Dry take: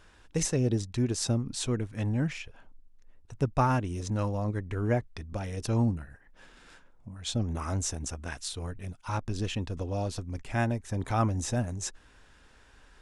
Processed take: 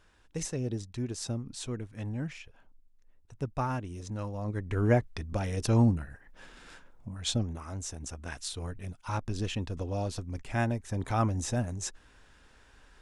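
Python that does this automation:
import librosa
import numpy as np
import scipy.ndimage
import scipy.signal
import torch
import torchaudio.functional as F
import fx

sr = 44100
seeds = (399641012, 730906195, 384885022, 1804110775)

y = fx.gain(x, sr, db=fx.line((4.32, -6.5), (4.79, 3.0), (7.3, 3.0), (7.63, -9.0), (8.41, -1.0)))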